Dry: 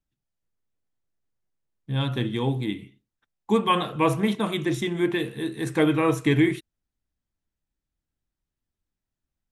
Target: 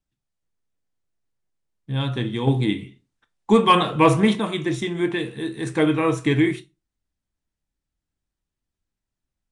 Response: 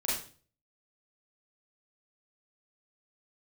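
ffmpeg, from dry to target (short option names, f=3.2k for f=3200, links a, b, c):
-filter_complex "[0:a]aresample=22050,aresample=44100,asplit=2[a][b];[1:a]atrim=start_sample=2205,asetrate=83790,aresample=44100[c];[b][c]afir=irnorm=-1:irlink=0,volume=-11dB[d];[a][d]amix=inputs=2:normalize=0,asettb=1/sr,asplit=3[e][f][g];[e]atrim=end=2.474[h];[f]atrim=start=2.47:end=4.4,asetpts=PTS-STARTPTS,afade=t=in:d=0.004:c=qsin,afade=t=out:st=1.926:d=0.004:c=qsin,acontrast=37[i];[g]atrim=start=4.396[j];[h][i]acrossfade=d=0.004:c1=hsin:c2=qsin[k];[k][j]acrossfade=d=0.004:c1=qsin:c2=hsin"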